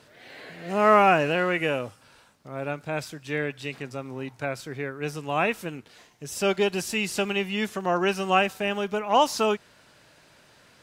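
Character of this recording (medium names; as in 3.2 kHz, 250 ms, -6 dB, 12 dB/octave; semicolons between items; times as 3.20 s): noise floor -57 dBFS; spectral tilt -4.5 dB/octave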